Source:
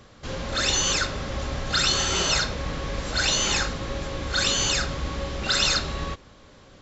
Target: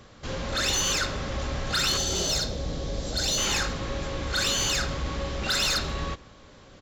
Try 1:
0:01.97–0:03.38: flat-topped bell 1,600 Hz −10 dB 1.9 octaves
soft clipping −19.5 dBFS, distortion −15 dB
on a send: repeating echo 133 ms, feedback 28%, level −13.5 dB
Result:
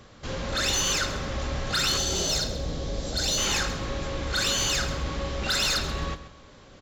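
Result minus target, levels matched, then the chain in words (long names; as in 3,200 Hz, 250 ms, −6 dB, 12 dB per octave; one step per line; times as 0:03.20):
echo-to-direct +12 dB
0:01.97–0:03.38: flat-topped bell 1,600 Hz −10 dB 1.9 octaves
soft clipping −19.5 dBFS, distortion −15 dB
on a send: repeating echo 133 ms, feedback 28%, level −25.5 dB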